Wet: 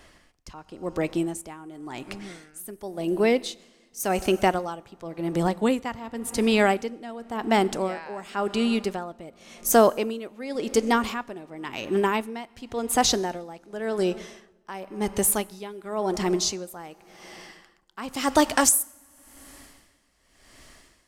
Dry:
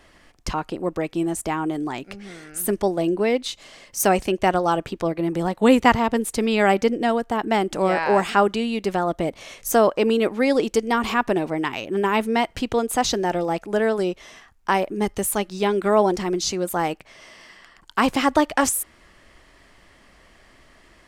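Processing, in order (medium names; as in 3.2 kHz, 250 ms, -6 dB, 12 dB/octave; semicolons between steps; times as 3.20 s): tone controls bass +1 dB, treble +4 dB, from 18.10 s treble +12 dB; reverberation RT60 2.8 s, pre-delay 6 ms, DRR 16.5 dB; logarithmic tremolo 0.92 Hz, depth 18 dB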